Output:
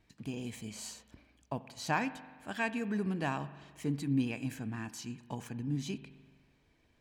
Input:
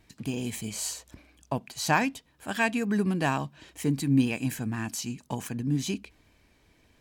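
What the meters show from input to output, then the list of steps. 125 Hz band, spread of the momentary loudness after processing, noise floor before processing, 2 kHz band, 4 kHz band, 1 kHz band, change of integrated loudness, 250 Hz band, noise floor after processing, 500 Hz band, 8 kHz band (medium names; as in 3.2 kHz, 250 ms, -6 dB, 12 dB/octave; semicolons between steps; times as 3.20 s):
-7.5 dB, 12 LU, -65 dBFS, -8.0 dB, -9.0 dB, -7.5 dB, -7.5 dB, -7.5 dB, -70 dBFS, -7.5 dB, -12.0 dB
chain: peaking EQ 14 kHz -8.5 dB 1.4 oct; spring tank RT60 1.5 s, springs 42 ms, chirp 80 ms, DRR 14 dB; trim -7.5 dB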